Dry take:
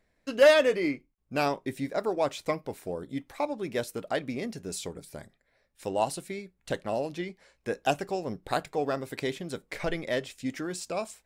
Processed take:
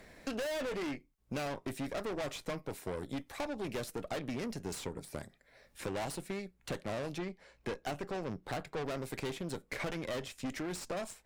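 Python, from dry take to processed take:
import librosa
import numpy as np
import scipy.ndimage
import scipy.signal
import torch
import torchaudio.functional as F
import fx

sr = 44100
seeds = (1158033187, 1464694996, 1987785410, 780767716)

y = fx.peak_eq(x, sr, hz=11000.0, db=-10.5, octaves=2.6, at=(7.18, 8.86))
y = fx.tube_stage(y, sr, drive_db=36.0, bias=0.75)
y = fx.band_squash(y, sr, depth_pct=70)
y = y * librosa.db_to_amplitude(1.5)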